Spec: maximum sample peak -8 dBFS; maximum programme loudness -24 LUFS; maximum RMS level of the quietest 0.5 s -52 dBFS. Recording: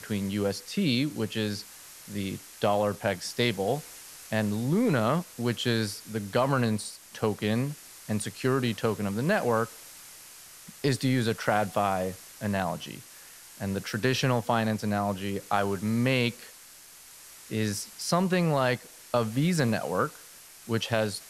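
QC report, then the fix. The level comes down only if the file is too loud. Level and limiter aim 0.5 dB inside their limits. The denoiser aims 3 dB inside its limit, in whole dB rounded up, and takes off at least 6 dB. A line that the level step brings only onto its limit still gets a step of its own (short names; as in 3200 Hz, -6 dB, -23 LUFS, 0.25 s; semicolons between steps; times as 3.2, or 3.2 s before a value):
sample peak -9.5 dBFS: OK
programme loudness -28.5 LUFS: OK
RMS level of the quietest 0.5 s -50 dBFS: fail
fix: denoiser 6 dB, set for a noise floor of -50 dBFS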